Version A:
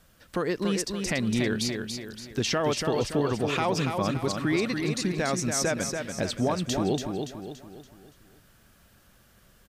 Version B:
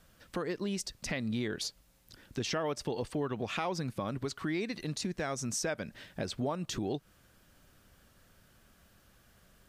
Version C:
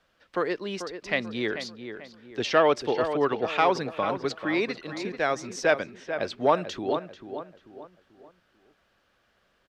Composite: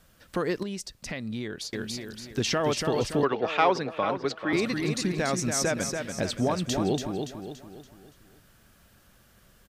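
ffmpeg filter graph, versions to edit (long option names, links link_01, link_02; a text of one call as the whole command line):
ffmpeg -i take0.wav -i take1.wav -i take2.wav -filter_complex "[0:a]asplit=3[link_01][link_02][link_03];[link_01]atrim=end=0.632[link_04];[1:a]atrim=start=0.628:end=1.732[link_05];[link_02]atrim=start=1.728:end=3.232[link_06];[2:a]atrim=start=3.228:end=4.532[link_07];[link_03]atrim=start=4.528[link_08];[link_04][link_05]acrossfade=duration=0.004:curve1=hsin:curve2=hsin[link_09];[link_09][link_06]acrossfade=duration=0.004:curve1=hsin:curve2=hsin[link_10];[link_10][link_07]acrossfade=duration=0.004:curve1=hsin:curve2=hsin[link_11];[link_11][link_08]acrossfade=duration=0.004:curve1=hsin:curve2=hsin" out.wav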